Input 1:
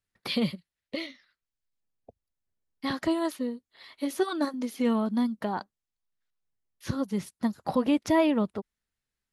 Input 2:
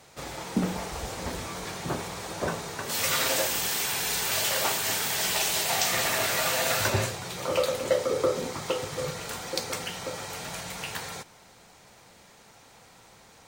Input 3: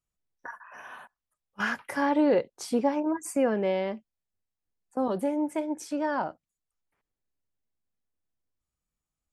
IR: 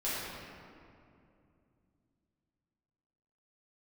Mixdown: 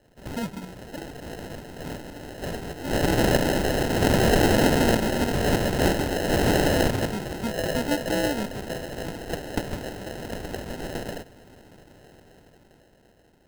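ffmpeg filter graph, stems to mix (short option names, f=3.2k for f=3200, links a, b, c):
-filter_complex "[0:a]volume=-4dB[a];[1:a]dynaudnorm=f=270:g=11:m=11.5dB,volume=-13dB[b];[2:a]asoftclip=type=tanh:threshold=-21.5dB,acompressor=threshold=-29dB:ratio=6,volume=-19.5dB,asplit=2[c][d];[d]apad=whole_len=594159[e];[b][e]sidechaincompress=threshold=-53dB:ratio=8:attack=5.2:release=179[f];[a][f][c]amix=inputs=3:normalize=0,aexciter=amount=2.7:drive=9.4:freq=5.7k,acrusher=samples=38:mix=1:aa=0.000001"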